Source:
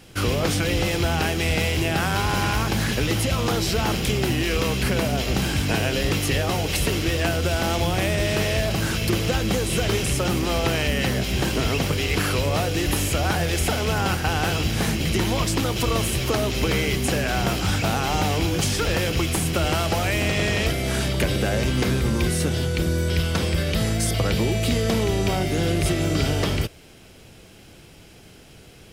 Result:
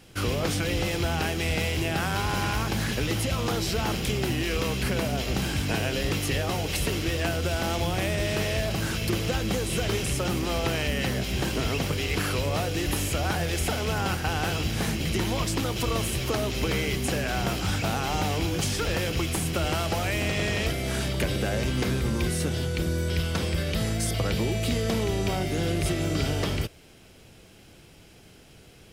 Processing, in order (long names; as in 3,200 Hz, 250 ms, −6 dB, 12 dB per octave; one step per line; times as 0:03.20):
0:20.38–0:21.21: surface crackle 64 per second −33 dBFS
level −4.5 dB